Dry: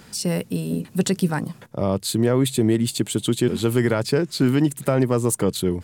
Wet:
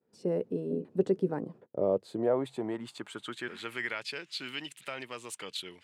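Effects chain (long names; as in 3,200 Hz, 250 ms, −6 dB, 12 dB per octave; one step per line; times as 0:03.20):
downward expander −35 dBFS
band-pass filter sweep 420 Hz → 2,800 Hz, 0:01.72–0:04.11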